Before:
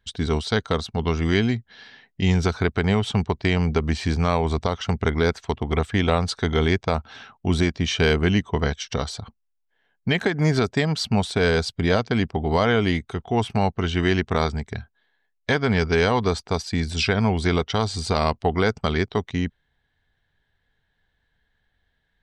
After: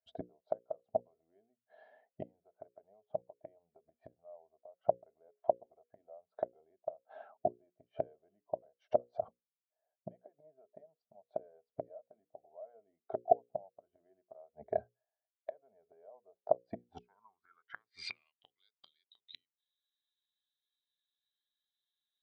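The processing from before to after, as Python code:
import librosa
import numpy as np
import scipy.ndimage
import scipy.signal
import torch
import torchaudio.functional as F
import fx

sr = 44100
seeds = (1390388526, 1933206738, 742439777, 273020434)

y = fx.gate_flip(x, sr, shuts_db=-15.0, range_db=-34)
y = fx.filter_sweep_bandpass(y, sr, from_hz=630.0, to_hz=3800.0, start_s=16.71, end_s=18.61, q=7.1)
y = fx.hum_notches(y, sr, base_hz=60, count=9)
y = fx.spectral_expand(y, sr, expansion=1.5)
y = F.gain(torch.from_numpy(y), 15.5).numpy()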